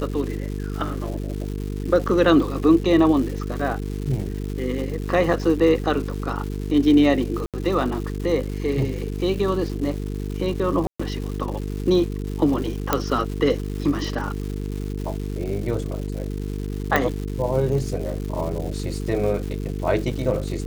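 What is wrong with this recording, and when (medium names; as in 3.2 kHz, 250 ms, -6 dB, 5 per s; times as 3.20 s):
buzz 50 Hz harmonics 9 -28 dBFS
crackle 360 per s -31 dBFS
7.46–7.54 s: dropout 77 ms
10.87–10.99 s: dropout 125 ms
12.93 s: pop -3 dBFS
16.96 s: pop -6 dBFS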